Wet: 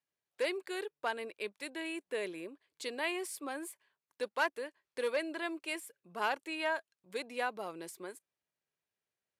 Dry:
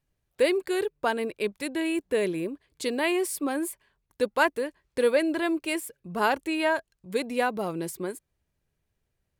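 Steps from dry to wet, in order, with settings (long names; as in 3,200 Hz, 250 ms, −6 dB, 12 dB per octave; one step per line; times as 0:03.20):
asymmetric clip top −17 dBFS
meter weighting curve A
level −8 dB
Ogg Vorbis 128 kbit/s 32,000 Hz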